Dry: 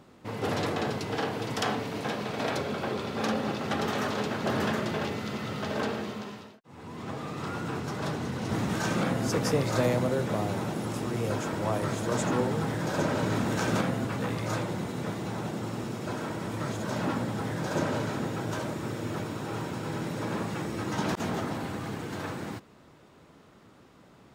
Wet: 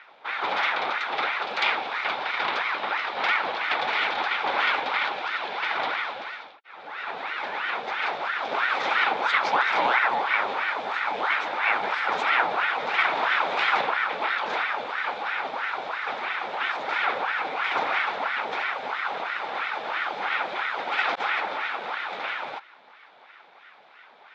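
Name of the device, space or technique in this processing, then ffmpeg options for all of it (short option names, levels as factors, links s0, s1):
voice changer toy: -af "aeval=exprs='val(0)*sin(2*PI*1000*n/s+1000*0.7/3*sin(2*PI*3*n/s))':c=same,highpass=440,equalizer=f=830:t=q:w=4:g=7,equalizer=f=1400:t=q:w=4:g=5,equalizer=f=2300:t=q:w=4:g=8,equalizer=f=3600:t=q:w=4:g=9,lowpass=f=4500:w=0.5412,lowpass=f=4500:w=1.3066,volume=1.5"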